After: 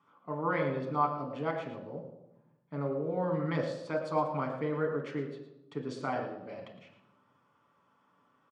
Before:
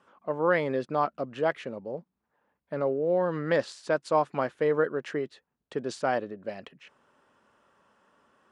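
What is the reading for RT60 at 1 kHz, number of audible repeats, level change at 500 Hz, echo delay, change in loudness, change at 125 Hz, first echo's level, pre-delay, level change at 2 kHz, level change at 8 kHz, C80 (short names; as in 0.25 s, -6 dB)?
0.95 s, 1, -7.0 dB, 0.112 s, -5.0 dB, +1.5 dB, -12.0 dB, 7 ms, -7.0 dB, n/a, 8.0 dB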